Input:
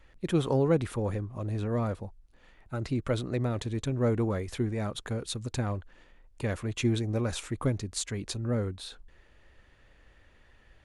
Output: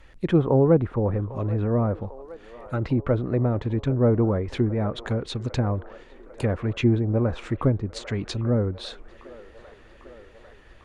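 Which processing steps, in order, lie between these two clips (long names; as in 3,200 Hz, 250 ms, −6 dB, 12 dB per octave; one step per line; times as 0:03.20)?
delay with a band-pass on its return 799 ms, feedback 72%, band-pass 820 Hz, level −17 dB
treble cut that deepens with the level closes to 1,100 Hz, closed at −26.5 dBFS
level +7 dB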